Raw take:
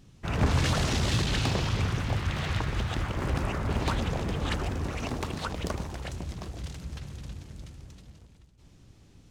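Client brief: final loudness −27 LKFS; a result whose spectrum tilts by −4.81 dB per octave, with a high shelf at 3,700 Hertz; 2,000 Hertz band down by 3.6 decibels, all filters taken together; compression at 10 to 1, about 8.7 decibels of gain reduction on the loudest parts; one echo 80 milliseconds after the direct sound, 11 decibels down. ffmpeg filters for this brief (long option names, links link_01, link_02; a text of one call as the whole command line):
ffmpeg -i in.wav -af "equalizer=frequency=2000:width_type=o:gain=-6.5,highshelf=frequency=3700:gain=6,acompressor=threshold=-29dB:ratio=10,aecho=1:1:80:0.282,volume=8dB" out.wav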